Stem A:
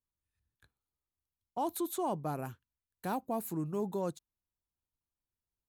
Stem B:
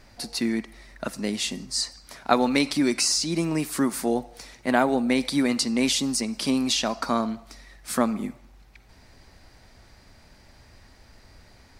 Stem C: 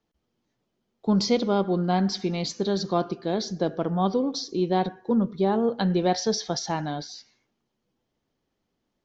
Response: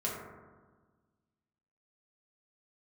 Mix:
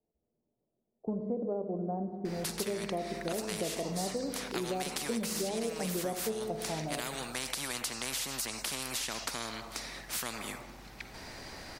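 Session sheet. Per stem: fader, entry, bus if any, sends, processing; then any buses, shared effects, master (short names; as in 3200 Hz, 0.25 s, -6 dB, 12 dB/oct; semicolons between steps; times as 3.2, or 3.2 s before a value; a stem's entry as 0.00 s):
-13.0 dB, 1.80 s, no send, dry
-12.0 dB, 2.25 s, no send, spectral compressor 4:1
-2.0 dB, 0.00 s, send -11 dB, ladder low-pass 770 Hz, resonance 40%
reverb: on, RT60 1.4 s, pre-delay 4 ms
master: compressor 5:1, threshold -31 dBFS, peak gain reduction 9 dB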